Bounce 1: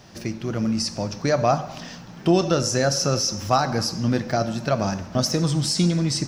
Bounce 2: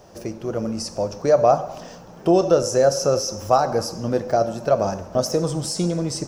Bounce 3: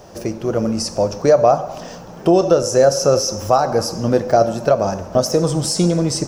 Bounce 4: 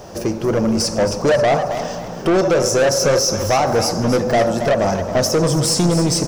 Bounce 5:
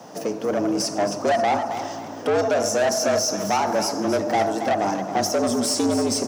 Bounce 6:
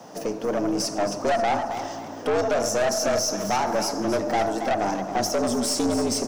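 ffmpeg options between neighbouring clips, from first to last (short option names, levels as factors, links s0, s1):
-af "equalizer=f=125:t=o:w=1:g=-6,equalizer=f=250:t=o:w=1:g=-6,equalizer=f=500:t=o:w=1:g=8,equalizer=f=2000:t=o:w=1:g=-8,equalizer=f=4000:t=o:w=1:g=-9,volume=1.19"
-af "alimiter=limit=0.335:level=0:latency=1:release=463,volume=2.11"
-filter_complex "[0:a]asoftclip=type=tanh:threshold=0.15,asplit=2[s0][s1];[s1]aecho=0:1:271|542|813|1084:0.299|0.104|0.0366|0.0128[s2];[s0][s2]amix=inputs=2:normalize=0,volume=1.78"
-af "afreqshift=100,volume=0.531"
-af "aeval=exprs='(tanh(4.47*val(0)+0.45)-tanh(0.45))/4.47':c=same"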